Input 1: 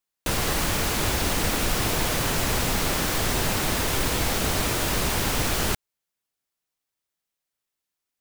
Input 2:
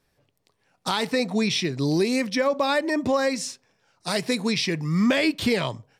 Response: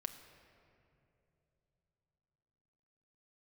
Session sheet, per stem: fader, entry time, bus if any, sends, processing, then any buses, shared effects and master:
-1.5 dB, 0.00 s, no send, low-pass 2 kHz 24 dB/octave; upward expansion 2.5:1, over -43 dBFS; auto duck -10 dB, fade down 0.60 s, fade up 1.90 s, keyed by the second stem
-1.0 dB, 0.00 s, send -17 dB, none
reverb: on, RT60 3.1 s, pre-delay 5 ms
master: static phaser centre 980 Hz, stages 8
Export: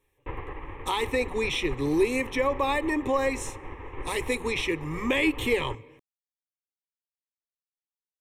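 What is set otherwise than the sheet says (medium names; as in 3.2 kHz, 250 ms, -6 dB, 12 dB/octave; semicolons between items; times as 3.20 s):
stem 1 -1.5 dB -> +5.5 dB; stem 2: send -17 dB -> -11 dB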